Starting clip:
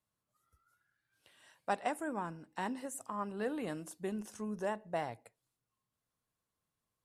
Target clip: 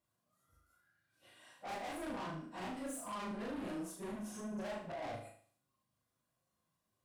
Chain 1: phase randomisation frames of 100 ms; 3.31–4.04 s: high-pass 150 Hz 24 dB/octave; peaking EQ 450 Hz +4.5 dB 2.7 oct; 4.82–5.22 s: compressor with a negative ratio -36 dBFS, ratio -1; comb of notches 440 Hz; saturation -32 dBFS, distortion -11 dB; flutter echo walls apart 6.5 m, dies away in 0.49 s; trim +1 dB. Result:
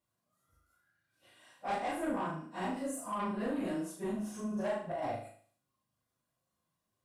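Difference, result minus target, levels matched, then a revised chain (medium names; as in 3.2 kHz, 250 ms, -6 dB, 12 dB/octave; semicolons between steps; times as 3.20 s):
saturation: distortion -7 dB
phase randomisation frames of 100 ms; 3.31–4.04 s: high-pass 150 Hz 24 dB/octave; peaking EQ 450 Hz +4.5 dB 2.7 oct; 4.82–5.22 s: compressor with a negative ratio -36 dBFS, ratio -1; comb of notches 440 Hz; saturation -43.5 dBFS, distortion -4 dB; flutter echo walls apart 6.5 m, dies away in 0.49 s; trim +1 dB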